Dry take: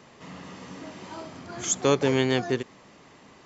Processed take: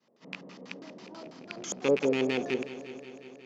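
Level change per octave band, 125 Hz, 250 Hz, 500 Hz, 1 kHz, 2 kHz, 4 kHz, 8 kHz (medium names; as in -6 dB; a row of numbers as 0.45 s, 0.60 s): -12.5 dB, -4.0 dB, -3.0 dB, -8.5 dB, -3.5 dB, -7.0 dB, no reading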